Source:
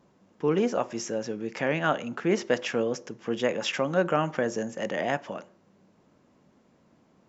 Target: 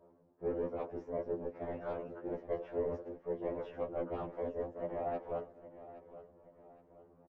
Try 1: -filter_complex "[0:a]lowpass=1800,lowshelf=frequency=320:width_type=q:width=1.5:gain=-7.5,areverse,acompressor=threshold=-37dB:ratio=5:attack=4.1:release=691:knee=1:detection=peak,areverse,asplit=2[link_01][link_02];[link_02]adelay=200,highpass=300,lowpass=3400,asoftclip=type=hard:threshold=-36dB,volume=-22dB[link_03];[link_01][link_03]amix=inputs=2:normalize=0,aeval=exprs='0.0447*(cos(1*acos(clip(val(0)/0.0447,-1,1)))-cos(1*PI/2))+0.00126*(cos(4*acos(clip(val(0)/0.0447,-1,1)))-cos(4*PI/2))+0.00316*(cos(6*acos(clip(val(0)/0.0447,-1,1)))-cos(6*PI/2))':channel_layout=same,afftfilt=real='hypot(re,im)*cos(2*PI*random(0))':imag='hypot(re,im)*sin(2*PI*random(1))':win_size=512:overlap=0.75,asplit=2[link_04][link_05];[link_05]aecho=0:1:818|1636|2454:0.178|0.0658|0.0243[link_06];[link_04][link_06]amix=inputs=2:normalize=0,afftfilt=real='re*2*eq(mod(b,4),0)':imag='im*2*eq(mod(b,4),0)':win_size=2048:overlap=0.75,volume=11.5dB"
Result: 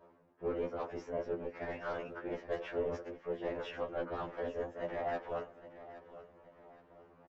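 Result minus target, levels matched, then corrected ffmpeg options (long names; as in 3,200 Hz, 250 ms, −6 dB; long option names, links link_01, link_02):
2,000 Hz band +10.0 dB
-filter_complex "[0:a]lowpass=660,lowshelf=frequency=320:width_type=q:width=1.5:gain=-7.5,areverse,acompressor=threshold=-37dB:ratio=5:attack=4.1:release=691:knee=1:detection=peak,areverse,asplit=2[link_01][link_02];[link_02]adelay=200,highpass=300,lowpass=3400,asoftclip=type=hard:threshold=-36dB,volume=-22dB[link_03];[link_01][link_03]amix=inputs=2:normalize=0,aeval=exprs='0.0447*(cos(1*acos(clip(val(0)/0.0447,-1,1)))-cos(1*PI/2))+0.00126*(cos(4*acos(clip(val(0)/0.0447,-1,1)))-cos(4*PI/2))+0.00316*(cos(6*acos(clip(val(0)/0.0447,-1,1)))-cos(6*PI/2))':channel_layout=same,afftfilt=real='hypot(re,im)*cos(2*PI*random(0))':imag='hypot(re,im)*sin(2*PI*random(1))':win_size=512:overlap=0.75,asplit=2[link_04][link_05];[link_05]aecho=0:1:818|1636|2454:0.178|0.0658|0.0243[link_06];[link_04][link_06]amix=inputs=2:normalize=0,afftfilt=real='re*2*eq(mod(b,4),0)':imag='im*2*eq(mod(b,4),0)':win_size=2048:overlap=0.75,volume=11.5dB"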